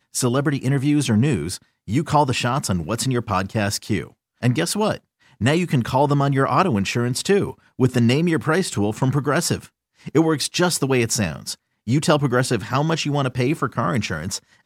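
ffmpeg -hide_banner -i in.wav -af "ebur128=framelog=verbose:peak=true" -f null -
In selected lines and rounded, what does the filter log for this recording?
Integrated loudness:
  I:         -20.8 LUFS
  Threshold: -31.0 LUFS
Loudness range:
  LRA:         2.6 LU
  Threshold: -41.0 LUFS
  LRA low:   -22.3 LUFS
  LRA high:  -19.7 LUFS
True peak:
  Peak:       -3.6 dBFS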